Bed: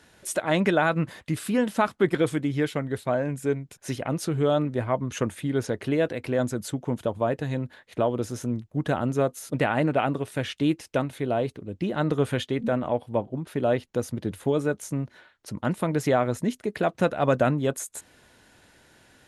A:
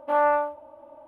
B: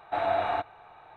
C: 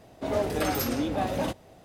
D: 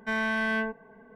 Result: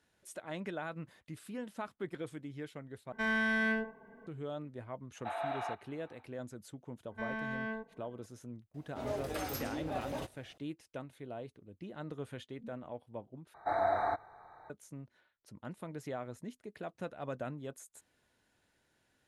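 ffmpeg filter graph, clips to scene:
-filter_complex "[4:a]asplit=2[a][b];[2:a]asplit=2[c][d];[0:a]volume=-18.5dB[e];[a]aecho=1:1:72:0.355[f];[c]highpass=620[g];[b]lowpass=f=1.5k:p=1[h];[3:a]equalizer=f=200:t=o:w=0.77:g=-5.5[i];[d]asuperstop=centerf=2900:order=8:qfactor=1.6[j];[e]asplit=3[k][l][m];[k]atrim=end=3.124[n];[f]atrim=end=1.15,asetpts=PTS-STARTPTS,volume=-4.5dB[o];[l]atrim=start=4.266:end=13.544[p];[j]atrim=end=1.16,asetpts=PTS-STARTPTS,volume=-4dB[q];[m]atrim=start=14.696[r];[g]atrim=end=1.16,asetpts=PTS-STARTPTS,volume=-9dB,afade=t=in:d=0.1,afade=t=out:st=1.06:d=0.1,adelay=226233S[s];[h]atrim=end=1.15,asetpts=PTS-STARTPTS,volume=-9dB,afade=t=in:d=0.004:c=hsin,afade=t=out:st=1.146:d=0.004:c=hsin,adelay=7110[t];[i]atrim=end=1.84,asetpts=PTS-STARTPTS,volume=-10.5dB,afade=t=in:d=0.004:c=hsin,afade=t=out:st=1.836:d=0.004:c=hsin,adelay=385434S[u];[n][o]acrossfade=d=0.004:c1=hsin:c2=hsin[v];[v][p]acrossfade=d=0.004:c1=hsin:c2=hsin[w];[w][q]acrossfade=d=0.004:c1=hsin:c2=hsin[x];[x][r]acrossfade=d=0.004:c1=hsin:c2=hsin[y];[y][s][t][u]amix=inputs=4:normalize=0"

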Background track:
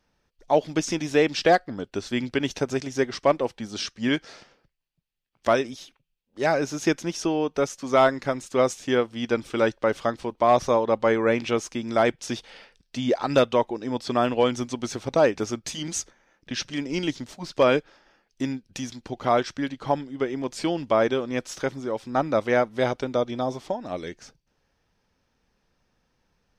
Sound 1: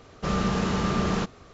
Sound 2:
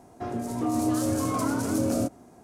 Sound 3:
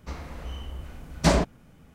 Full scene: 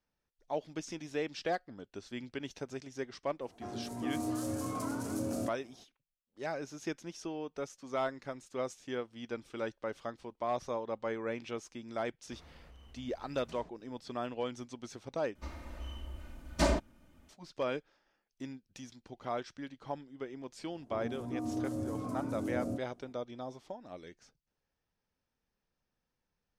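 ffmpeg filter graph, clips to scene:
-filter_complex "[2:a]asplit=2[a][b];[3:a]asplit=2[c][d];[0:a]volume=-15.5dB[e];[c]acompressor=threshold=-34dB:ratio=6:attack=3.2:release=140:knee=1:detection=peak[f];[d]aecho=1:1:3.3:0.6[g];[b]tiltshelf=f=970:g=6.5[h];[e]asplit=2[i][j];[i]atrim=end=15.354[k];[g]atrim=end=1.94,asetpts=PTS-STARTPTS,volume=-9dB[l];[j]atrim=start=17.286[m];[a]atrim=end=2.43,asetpts=PTS-STARTPTS,volume=-10dB,afade=t=in:d=0.004:c=hsin,afade=t=out:st=2.426:d=0.004:c=hsin,adelay=150381S[n];[f]atrim=end=1.94,asetpts=PTS-STARTPTS,volume=-17dB,afade=t=in:d=0.004:c=hsin,afade=t=out:st=1.936:d=0.004:c=hsin,adelay=12250[o];[h]atrim=end=2.43,asetpts=PTS-STARTPTS,volume=-15.5dB,afade=t=in:d=0.004:c=hsin,afade=t=out:st=2.426:d=0.004:c=hsin,adelay=20700[p];[k][l]acrossfade=d=0.004:c1=hsin:c2=hsin[q];[q][m]acrossfade=d=0.004:c1=hsin:c2=hsin[r];[r][n][o][p]amix=inputs=4:normalize=0"

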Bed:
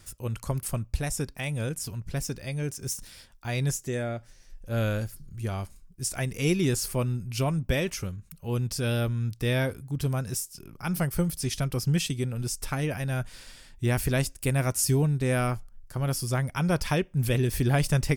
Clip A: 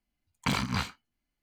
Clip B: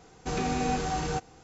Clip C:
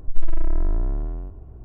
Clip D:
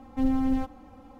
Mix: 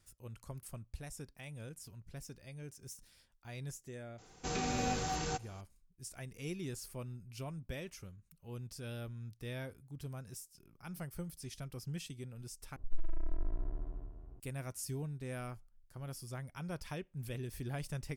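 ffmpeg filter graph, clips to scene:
-filter_complex "[0:a]volume=-17dB[a];[2:a]highshelf=f=2.6k:g=7[b];[3:a]aecho=1:1:368:0.376[c];[a]asplit=2[d][e];[d]atrim=end=12.764[f];[c]atrim=end=1.64,asetpts=PTS-STARTPTS,volume=-15.5dB[g];[e]atrim=start=14.396[h];[b]atrim=end=1.43,asetpts=PTS-STARTPTS,volume=-7.5dB,afade=t=in:d=0.004:c=hsin,afade=t=out:st=1.426:d=0.004:c=hsin,adelay=4180[i];[f][g]acrossfade=d=0.004:c1=hsin:c2=hsin[j];[j][h]acrossfade=d=0.004:c1=hsin:c2=hsin[k];[k][i]amix=inputs=2:normalize=0"

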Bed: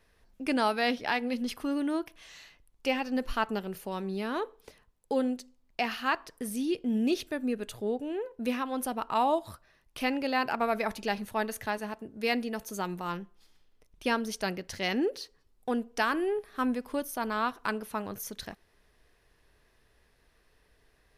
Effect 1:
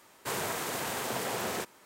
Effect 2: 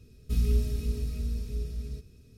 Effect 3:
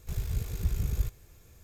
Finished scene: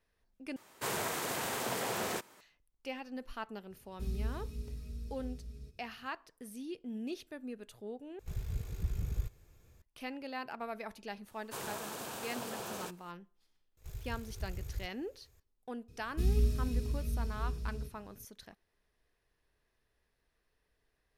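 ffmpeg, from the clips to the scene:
-filter_complex "[1:a]asplit=2[a][b];[2:a]asplit=2[c][d];[3:a]asplit=2[e][f];[0:a]volume=-12.5dB[g];[e]highshelf=f=4.3k:g=-6[h];[b]equalizer=f=2k:t=o:w=0.24:g=-9.5[i];[f]equalizer=f=200:t=o:w=0.51:g=-13.5[j];[g]asplit=3[k][l][m];[k]atrim=end=0.564[n];[a]atrim=end=1.85,asetpts=PTS-STARTPTS,volume=-2dB[o];[l]atrim=start=2.406:end=8.194[p];[h]atrim=end=1.63,asetpts=PTS-STARTPTS,volume=-6dB[q];[m]atrim=start=9.816[r];[c]atrim=end=2.37,asetpts=PTS-STARTPTS,volume=-11.5dB,afade=t=in:d=0.004:c=hsin,afade=t=out:st=2.366:d=0.004:c=hsin,adelay=3700[s];[i]atrim=end=1.85,asetpts=PTS-STARTPTS,volume=-8dB,afade=t=in:d=0.004:c=hsin,afade=t=out:st=1.846:d=0.004:c=hsin,adelay=11260[t];[j]atrim=end=1.63,asetpts=PTS-STARTPTS,volume=-11dB,afade=t=in:d=0.004:c=hsin,afade=t=out:st=1.626:d=0.004:c=hsin,adelay=13770[u];[d]atrim=end=2.37,asetpts=PTS-STARTPTS,volume=-3.5dB,afade=t=in:d=0.004:c=hsin,afade=t=out:st=2.366:d=0.004:c=hsin,adelay=700308S[v];[n][o]acrossfade=d=0.004:c1=hsin:c2=hsin[w];[w][p]acrossfade=d=0.004:c1=hsin:c2=hsin[x];[x][q]acrossfade=d=0.004:c1=hsin:c2=hsin[y];[y][r]acrossfade=d=0.004:c1=hsin:c2=hsin[z];[z][s][t][u][v]amix=inputs=5:normalize=0"

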